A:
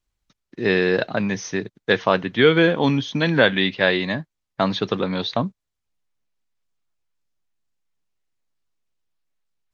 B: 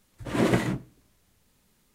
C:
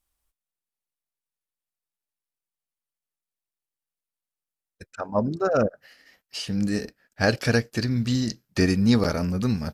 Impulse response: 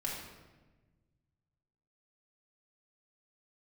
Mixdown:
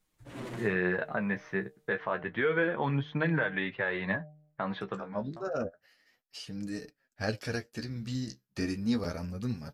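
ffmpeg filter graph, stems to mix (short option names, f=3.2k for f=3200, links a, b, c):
-filter_complex "[0:a]equalizer=f=270:w=4.4:g=-8,acompressor=threshold=-20dB:ratio=2,lowpass=f=1.7k:t=q:w=1.6,volume=-3dB[a];[1:a]asoftclip=type=tanh:threshold=-24.5dB,volume=-8.5dB[b];[2:a]volume=-8dB,asplit=2[c][d];[d]apad=whole_len=429161[e];[a][e]sidechaincompress=threshold=-50dB:ratio=4:attack=9.5:release=1310[f];[f][b]amix=inputs=2:normalize=0,bandreject=f=151.5:t=h:w=4,bandreject=f=303:t=h:w=4,bandreject=f=454.5:t=h:w=4,bandreject=f=606:t=h:w=4,bandreject=f=757.5:t=h:w=4,alimiter=limit=-15dB:level=0:latency=1:release=117,volume=0dB[g];[c][g]amix=inputs=2:normalize=0,flanger=delay=6.4:depth=8.8:regen=31:speed=0.3:shape=sinusoidal"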